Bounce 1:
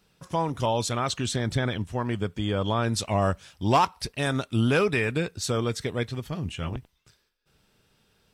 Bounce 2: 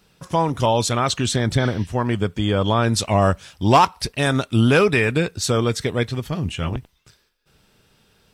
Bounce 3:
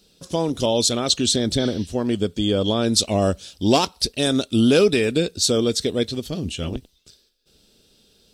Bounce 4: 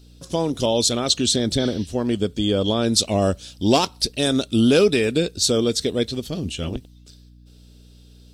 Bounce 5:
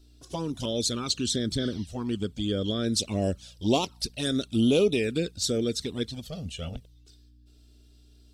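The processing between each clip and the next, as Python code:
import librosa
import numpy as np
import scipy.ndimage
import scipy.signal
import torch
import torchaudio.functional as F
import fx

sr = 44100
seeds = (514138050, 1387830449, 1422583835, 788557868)

y1 = fx.spec_repair(x, sr, seeds[0], start_s=1.62, length_s=0.22, low_hz=1600.0, high_hz=6200.0, source='both')
y1 = y1 * 10.0 ** (7.0 / 20.0)
y2 = fx.graphic_eq_10(y1, sr, hz=(125, 250, 500, 1000, 2000, 4000, 8000), db=(-9, 4, 3, -11, -9, 8, 3))
y3 = fx.add_hum(y2, sr, base_hz=60, snr_db=26)
y4 = fx.env_flanger(y3, sr, rest_ms=3.1, full_db=-13.0)
y4 = y4 * 10.0 ** (-5.5 / 20.0)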